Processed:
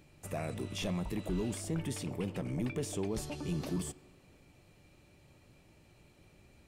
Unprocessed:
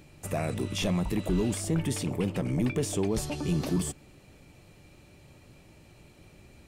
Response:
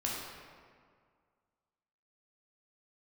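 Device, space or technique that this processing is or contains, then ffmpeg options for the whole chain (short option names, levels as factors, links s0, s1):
filtered reverb send: -filter_complex "[0:a]asplit=2[s0][s1];[s1]highpass=300,lowpass=5800[s2];[1:a]atrim=start_sample=2205[s3];[s2][s3]afir=irnorm=-1:irlink=0,volume=0.0944[s4];[s0][s4]amix=inputs=2:normalize=0,volume=0.422"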